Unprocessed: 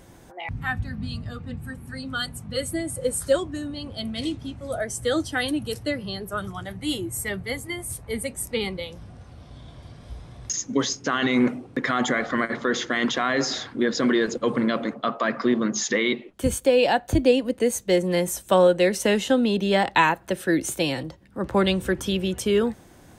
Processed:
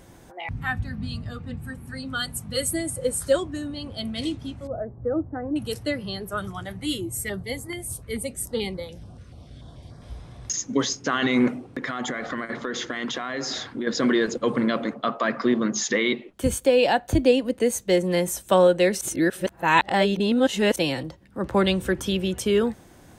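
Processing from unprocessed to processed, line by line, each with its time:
2.29–2.9 high shelf 6400 Hz +11 dB
4.67–5.56 Gaussian blur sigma 8.5 samples
6.86–10.02 stepped notch 6.9 Hz 810–2800 Hz
11.61–13.87 compressor, threshold -25 dBFS
19.01–20.76 reverse

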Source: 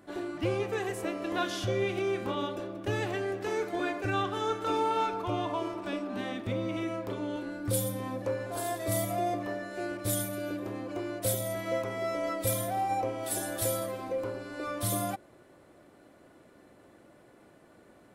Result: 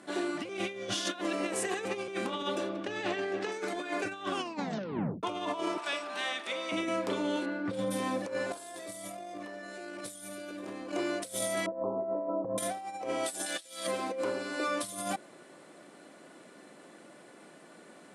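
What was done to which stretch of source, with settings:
0.49–2.08 reverse
2.69–3.52 LPF 5100 Hz
4.27 tape stop 0.96 s
5.77–6.72 HPF 750 Hz
7.45–7.9 LPF 3000 Hz -> 1800 Hz
8.53–10.92 fast leveller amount 100%
11.66–12.58 steep low-pass 1100 Hz 72 dB/oct
13.46–13.87 weighting filter D
whole clip: elliptic band-pass 170–9500 Hz, stop band 50 dB; high shelf 2200 Hz +8.5 dB; negative-ratio compressor -34 dBFS, ratio -0.5

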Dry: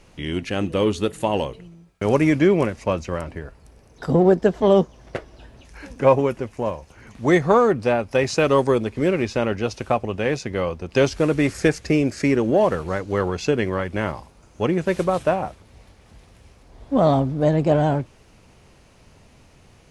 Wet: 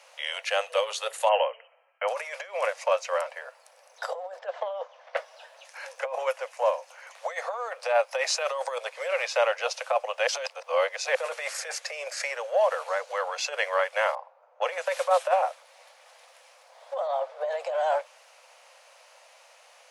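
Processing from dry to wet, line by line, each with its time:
1.29–2.08 brick-wall FIR low-pass 3200 Hz
4.39–5.17 BPF 180–3200 Hz
10.27–11.15 reverse
12.07–13.37 compressor 2:1, threshold -23 dBFS
14.15–14.86 low-pass opened by the level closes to 770 Hz, open at -19.5 dBFS
17.07–17.51 high shelf 5200 Hz -12 dB
whole clip: negative-ratio compressor -20 dBFS, ratio -0.5; steep high-pass 510 Hz 96 dB/oct

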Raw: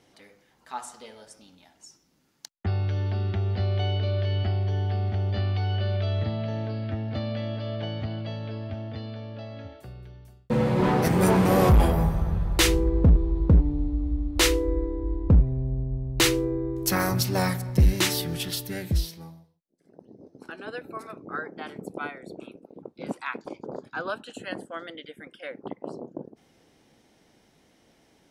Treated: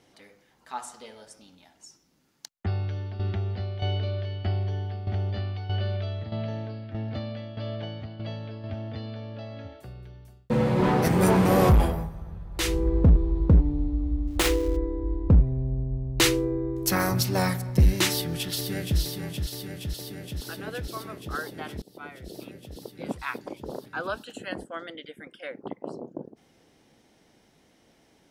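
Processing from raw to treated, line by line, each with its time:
2.57–8.64 tremolo saw down 1.6 Hz, depth 70%
11.7–12.91 dip -13 dB, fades 0.39 s
14.27–14.77 switching dead time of 0.12 ms
18.11–18.99 echo throw 0.47 s, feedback 80%, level -6.5 dB
21.82–22.45 fade in linear, from -23.5 dB

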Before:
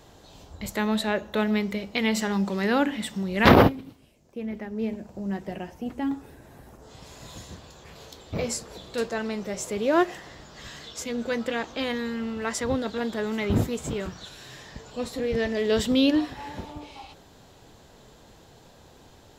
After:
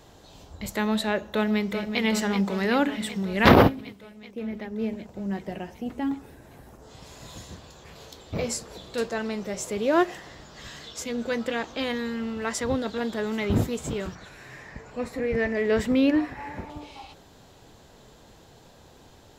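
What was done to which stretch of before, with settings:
1.31–2.02 echo throw 0.38 s, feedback 75%, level -8 dB
14.15–16.7 resonant high shelf 2700 Hz -6 dB, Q 3

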